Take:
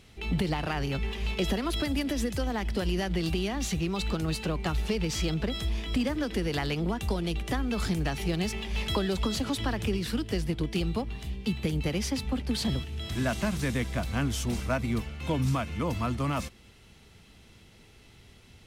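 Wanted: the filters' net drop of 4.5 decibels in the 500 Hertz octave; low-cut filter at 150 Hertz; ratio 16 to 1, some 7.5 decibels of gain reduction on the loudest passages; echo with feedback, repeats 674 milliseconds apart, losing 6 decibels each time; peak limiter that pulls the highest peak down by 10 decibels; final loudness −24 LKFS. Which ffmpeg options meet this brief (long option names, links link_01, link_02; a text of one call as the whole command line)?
ffmpeg -i in.wav -af "highpass=150,equalizer=frequency=500:width_type=o:gain=-6,acompressor=threshold=-34dB:ratio=16,alimiter=level_in=8.5dB:limit=-24dB:level=0:latency=1,volume=-8.5dB,aecho=1:1:674|1348|2022|2696|3370|4044:0.501|0.251|0.125|0.0626|0.0313|0.0157,volume=16dB" out.wav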